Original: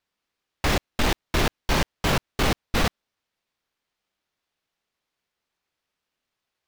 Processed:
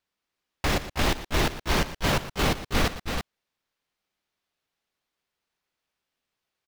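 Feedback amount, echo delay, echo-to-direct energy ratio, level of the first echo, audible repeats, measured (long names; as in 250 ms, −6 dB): repeats not evenly spaced, 117 ms, −4.5 dB, −13.5 dB, 2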